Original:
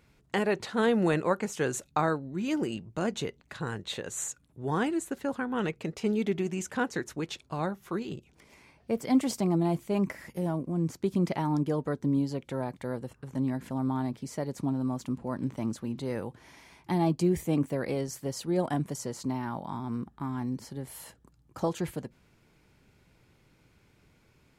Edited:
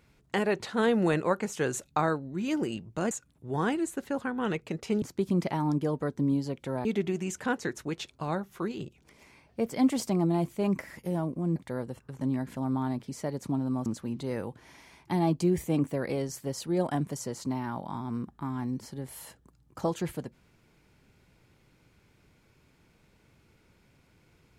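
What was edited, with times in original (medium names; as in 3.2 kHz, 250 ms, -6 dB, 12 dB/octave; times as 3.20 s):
3.11–4.25 s: delete
10.87–12.70 s: move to 6.16 s
15.00–15.65 s: delete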